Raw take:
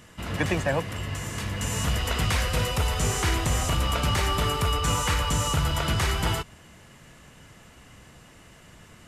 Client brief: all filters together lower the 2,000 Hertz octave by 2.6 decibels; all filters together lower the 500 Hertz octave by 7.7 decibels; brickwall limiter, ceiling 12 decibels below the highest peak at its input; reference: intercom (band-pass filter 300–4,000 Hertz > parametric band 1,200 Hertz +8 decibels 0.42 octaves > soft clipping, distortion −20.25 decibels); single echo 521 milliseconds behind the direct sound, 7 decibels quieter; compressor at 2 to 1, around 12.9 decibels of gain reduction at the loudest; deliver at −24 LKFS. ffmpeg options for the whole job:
ffmpeg -i in.wav -af "equalizer=frequency=500:width_type=o:gain=-9,equalizer=frequency=2000:width_type=o:gain=-4,acompressor=threshold=-46dB:ratio=2,alimiter=level_in=15dB:limit=-24dB:level=0:latency=1,volume=-15dB,highpass=300,lowpass=4000,equalizer=frequency=1200:width_type=o:width=0.42:gain=8,aecho=1:1:521:0.447,asoftclip=threshold=-40dB,volume=26.5dB" out.wav

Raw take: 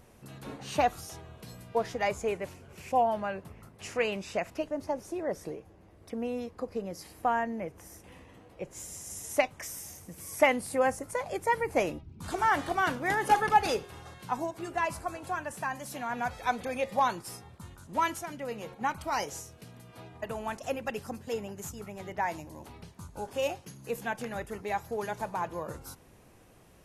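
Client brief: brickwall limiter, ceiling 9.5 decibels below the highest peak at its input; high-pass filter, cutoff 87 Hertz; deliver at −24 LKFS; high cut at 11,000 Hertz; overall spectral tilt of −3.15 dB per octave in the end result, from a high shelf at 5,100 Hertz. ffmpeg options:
ffmpeg -i in.wav -af "highpass=87,lowpass=11000,highshelf=frequency=5100:gain=7.5,volume=10dB,alimiter=limit=-10dB:level=0:latency=1" out.wav

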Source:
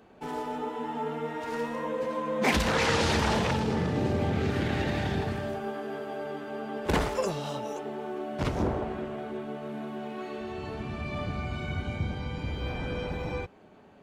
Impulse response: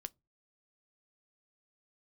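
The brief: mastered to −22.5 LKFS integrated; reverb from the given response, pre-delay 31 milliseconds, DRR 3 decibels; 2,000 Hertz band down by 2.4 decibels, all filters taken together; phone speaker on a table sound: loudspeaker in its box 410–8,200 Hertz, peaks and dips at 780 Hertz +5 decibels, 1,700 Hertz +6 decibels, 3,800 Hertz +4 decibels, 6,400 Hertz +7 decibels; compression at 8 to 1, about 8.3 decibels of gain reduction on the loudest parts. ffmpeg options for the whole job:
-filter_complex "[0:a]equalizer=frequency=2000:width_type=o:gain=-7.5,acompressor=threshold=-31dB:ratio=8,asplit=2[link_01][link_02];[1:a]atrim=start_sample=2205,adelay=31[link_03];[link_02][link_03]afir=irnorm=-1:irlink=0,volume=1dB[link_04];[link_01][link_04]amix=inputs=2:normalize=0,highpass=frequency=410:width=0.5412,highpass=frequency=410:width=1.3066,equalizer=frequency=780:width_type=q:width=4:gain=5,equalizer=frequency=1700:width_type=q:width=4:gain=6,equalizer=frequency=3800:width_type=q:width=4:gain=4,equalizer=frequency=6400:width_type=q:width=4:gain=7,lowpass=frequency=8200:width=0.5412,lowpass=frequency=8200:width=1.3066,volume=14dB"

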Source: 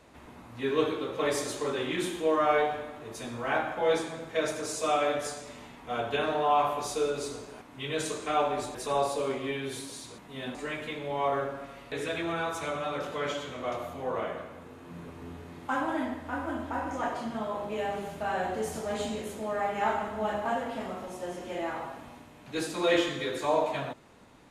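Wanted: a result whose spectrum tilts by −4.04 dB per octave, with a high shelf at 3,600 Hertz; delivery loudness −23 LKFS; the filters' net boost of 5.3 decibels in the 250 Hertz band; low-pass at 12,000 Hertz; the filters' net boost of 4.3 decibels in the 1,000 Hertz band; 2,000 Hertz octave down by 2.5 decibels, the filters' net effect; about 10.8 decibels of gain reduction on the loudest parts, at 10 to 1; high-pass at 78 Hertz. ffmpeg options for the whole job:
ffmpeg -i in.wav -af "highpass=78,lowpass=12000,equalizer=frequency=250:width_type=o:gain=6.5,equalizer=frequency=1000:width_type=o:gain=6.5,equalizer=frequency=2000:width_type=o:gain=-8,highshelf=frequency=3600:gain=6.5,acompressor=threshold=-28dB:ratio=10,volume=10.5dB" out.wav

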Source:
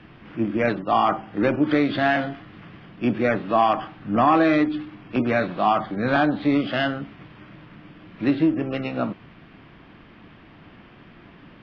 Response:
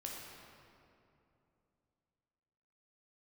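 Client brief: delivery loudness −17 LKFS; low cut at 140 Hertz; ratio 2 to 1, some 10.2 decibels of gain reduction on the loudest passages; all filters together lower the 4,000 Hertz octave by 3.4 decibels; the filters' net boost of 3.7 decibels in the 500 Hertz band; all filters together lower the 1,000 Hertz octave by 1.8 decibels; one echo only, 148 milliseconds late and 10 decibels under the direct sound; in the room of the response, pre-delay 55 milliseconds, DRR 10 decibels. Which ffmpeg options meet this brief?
-filter_complex "[0:a]highpass=140,equalizer=frequency=500:width_type=o:gain=7,equalizer=frequency=1000:width_type=o:gain=-6,equalizer=frequency=4000:width_type=o:gain=-4.5,acompressor=threshold=-32dB:ratio=2,aecho=1:1:148:0.316,asplit=2[link_01][link_02];[1:a]atrim=start_sample=2205,adelay=55[link_03];[link_02][link_03]afir=irnorm=-1:irlink=0,volume=-9dB[link_04];[link_01][link_04]amix=inputs=2:normalize=0,volume=12.5dB"

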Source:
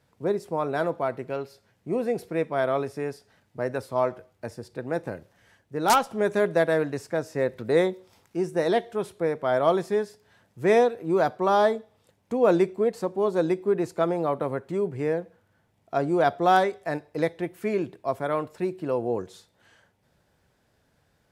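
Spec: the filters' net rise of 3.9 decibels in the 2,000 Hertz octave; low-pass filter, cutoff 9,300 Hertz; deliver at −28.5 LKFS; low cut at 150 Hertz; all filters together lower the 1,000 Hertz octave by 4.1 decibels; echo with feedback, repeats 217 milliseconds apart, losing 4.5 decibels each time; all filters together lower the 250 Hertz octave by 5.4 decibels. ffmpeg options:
ffmpeg -i in.wav -af "highpass=150,lowpass=9300,equalizer=frequency=250:width_type=o:gain=-7.5,equalizer=frequency=1000:width_type=o:gain=-7.5,equalizer=frequency=2000:width_type=o:gain=8,aecho=1:1:217|434|651|868|1085|1302|1519|1736|1953:0.596|0.357|0.214|0.129|0.0772|0.0463|0.0278|0.0167|0.01,volume=-1.5dB" out.wav

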